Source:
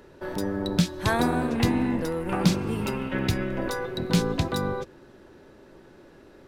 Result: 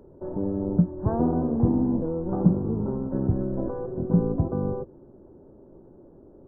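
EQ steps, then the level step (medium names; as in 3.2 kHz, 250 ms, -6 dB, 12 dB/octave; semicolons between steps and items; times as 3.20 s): Gaussian low-pass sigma 11 samples; +2.5 dB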